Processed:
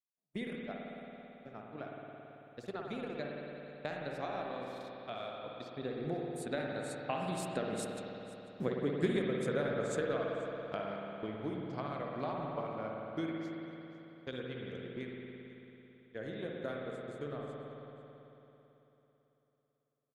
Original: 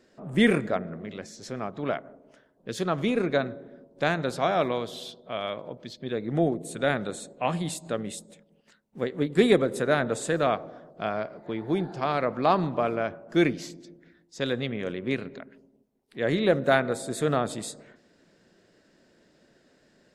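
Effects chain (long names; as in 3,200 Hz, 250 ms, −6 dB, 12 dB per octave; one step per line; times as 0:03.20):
source passing by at 0:08.39, 15 m/s, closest 9 metres
noise gate −54 dBFS, range −40 dB
downward compressor 2.5 to 1, threshold −43 dBFS, peak gain reduction 16.5 dB
single-tap delay 494 ms −19 dB
transient designer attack +5 dB, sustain −8 dB
spring reverb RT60 3.5 s, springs 55 ms, chirp 40 ms, DRR −1.5 dB
level +2.5 dB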